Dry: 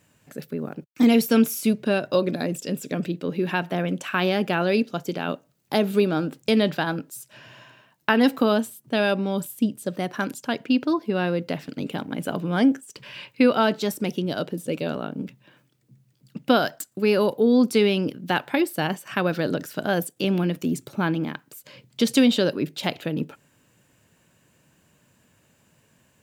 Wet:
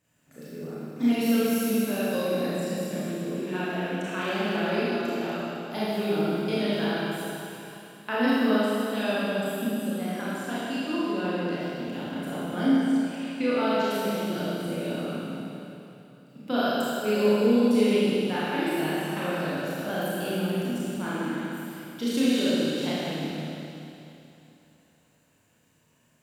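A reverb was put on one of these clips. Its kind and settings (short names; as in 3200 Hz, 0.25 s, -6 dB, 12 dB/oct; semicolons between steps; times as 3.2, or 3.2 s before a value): Schroeder reverb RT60 3 s, combs from 26 ms, DRR -10 dB; gain -14 dB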